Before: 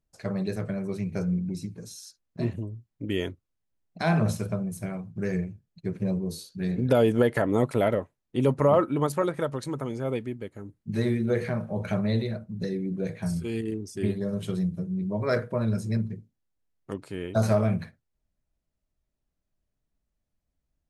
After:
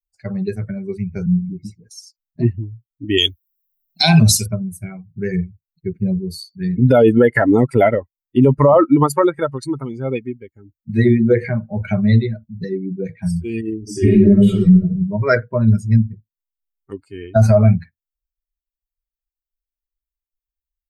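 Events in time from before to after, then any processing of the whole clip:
0:01.26–0:01.91: all-pass dispersion highs, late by 88 ms, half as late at 640 Hz
0:03.18–0:04.46: high shelf with overshoot 2,500 Hz +12 dB, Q 1.5
0:13.79–0:14.81: thrown reverb, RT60 1.1 s, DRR −6 dB
whole clip: spectral dynamics exaggerated over time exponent 2; boost into a limiter +21 dB; level −2 dB

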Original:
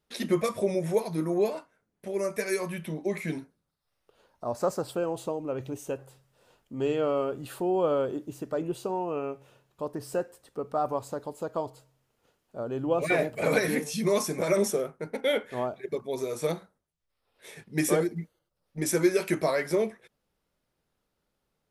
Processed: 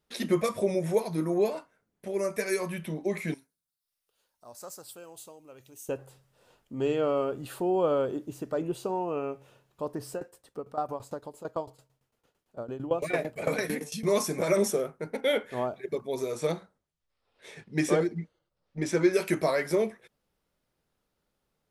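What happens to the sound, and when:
0:03.34–0:05.89: first-order pre-emphasis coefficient 0.9
0:10.10–0:14.08: shaped tremolo saw down 8.9 Hz, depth 85%
0:16.31–0:19.12: low-pass filter 9,400 Hz → 4,500 Hz

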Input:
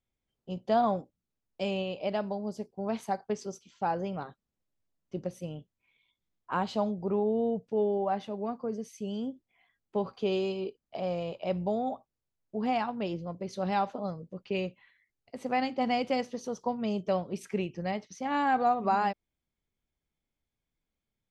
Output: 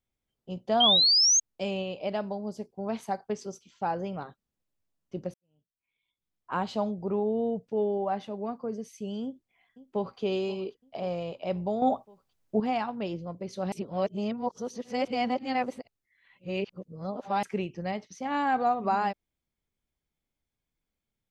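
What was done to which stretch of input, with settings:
0:00.80–0:01.40: sound drawn into the spectrogram rise 3,100–6,600 Hz −21 dBFS
0:05.34–0:06.55: fade in quadratic
0:09.23–0:10.21: delay throw 530 ms, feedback 50%, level −16 dB
0:11.82–0:12.60: clip gain +8.5 dB
0:13.72–0:17.43: reverse

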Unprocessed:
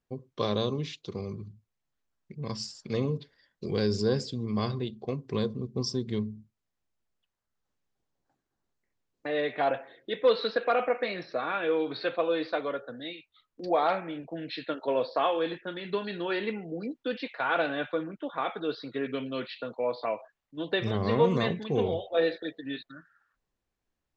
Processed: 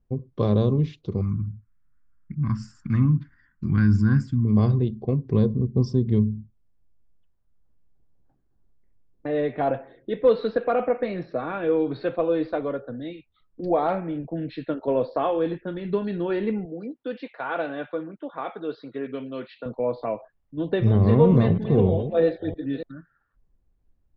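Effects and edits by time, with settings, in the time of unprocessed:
0:01.21–0:04.45: drawn EQ curve 300 Hz 0 dB, 450 Hz −28 dB, 1,400 Hz +15 dB, 2,200 Hz +5 dB, 3,900 Hz −10 dB, 7,200 Hz +4 dB
0:16.65–0:19.66: high-pass filter 580 Hz 6 dB per octave
0:20.62–0:22.83: delay that plays each chunk backwards 320 ms, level −11 dB
whole clip: spectral tilt −4.5 dB per octave

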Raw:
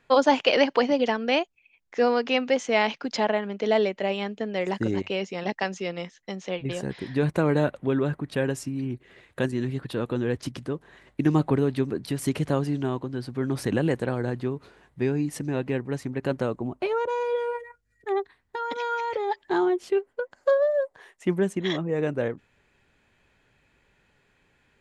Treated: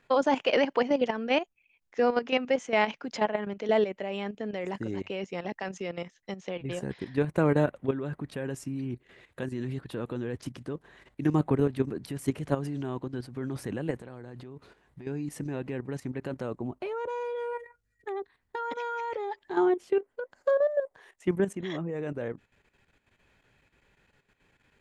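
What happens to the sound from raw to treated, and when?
0:14.00–0:15.07: downward compressor 10 to 1, threshold −32 dBFS
whole clip: output level in coarse steps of 11 dB; dynamic equaliser 4,300 Hz, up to −7 dB, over −54 dBFS, Q 1.5

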